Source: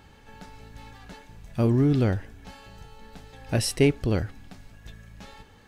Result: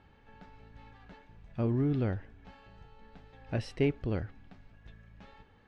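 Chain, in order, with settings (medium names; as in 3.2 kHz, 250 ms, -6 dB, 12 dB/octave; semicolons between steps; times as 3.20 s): low-pass 2.9 kHz 12 dB/octave; trim -8 dB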